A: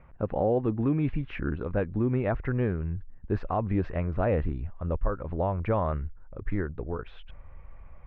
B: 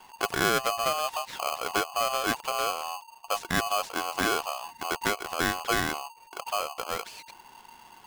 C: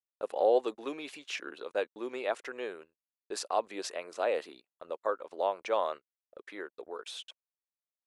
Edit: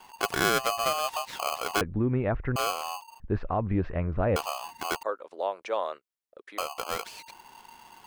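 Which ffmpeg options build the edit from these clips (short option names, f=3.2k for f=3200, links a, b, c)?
-filter_complex "[0:a]asplit=2[a][b];[1:a]asplit=4[c][d][e][f];[c]atrim=end=1.812[g];[a]atrim=start=1.808:end=2.562[h];[d]atrim=start=2.558:end=3.202[i];[b]atrim=start=3.198:end=4.362[j];[e]atrim=start=4.358:end=5.032[k];[2:a]atrim=start=5.028:end=6.582[l];[f]atrim=start=6.578[m];[g][h]acrossfade=d=0.004:c1=hsin:c2=hsin[n];[n][i]acrossfade=d=0.004:c1=hsin:c2=hsin[o];[o][j]acrossfade=d=0.004:c1=hsin:c2=hsin[p];[p][k]acrossfade=d=0.004:c1=hsin:c2=hsin[q];[q][l]acrossfade=d=0.004:c1=hsin:c2=hsin[r];[r][m]acrossfade=d=0.004:c1=hsin:c2=hsin"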